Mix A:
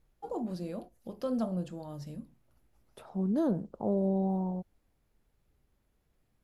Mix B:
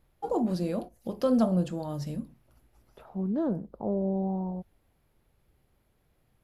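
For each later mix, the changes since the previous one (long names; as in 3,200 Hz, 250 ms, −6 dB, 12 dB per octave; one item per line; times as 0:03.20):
first voice +8.0 dB
second voice: add low-pass filter 2,800 Hz 12 dB per octave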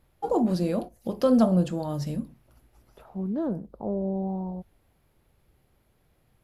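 first voice +4.0 dB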